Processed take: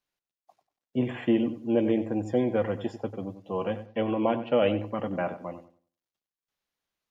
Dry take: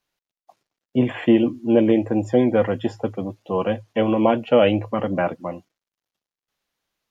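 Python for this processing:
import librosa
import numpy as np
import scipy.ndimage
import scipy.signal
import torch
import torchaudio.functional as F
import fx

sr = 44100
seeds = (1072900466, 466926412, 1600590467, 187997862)

y = fx.lowpass(x, sr, hz=5000.0, slope=24, at=(3.86, 4.8))
y = fx.echo_filtered(y, sr, ms=94, feedback_pct=26, hz=2500.0, wet_db=-11.5)
y = y * librosa.db_to_amplitude(-8.0)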